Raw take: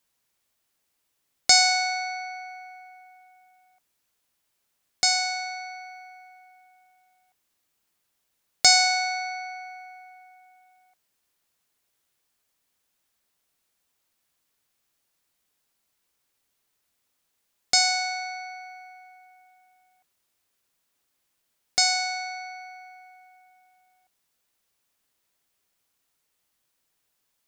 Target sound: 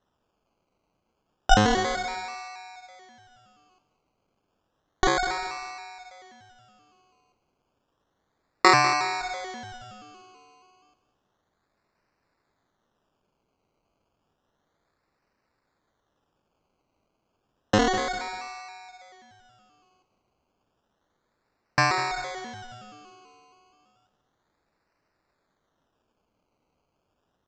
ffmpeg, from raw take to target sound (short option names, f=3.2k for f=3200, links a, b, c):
-filter_complex "[0:a]acrusher=samples=19:mix=1:aa=0.000001:lfo=1:lforange=11.4:lforate=0.31,asplit=2[a][b];[b]aecho=0:1:198|396|594:0.2|0.0638|0.0204[c];[a][c]amix=inputs=2:normalize=0,aresample=16000,aresample=44100"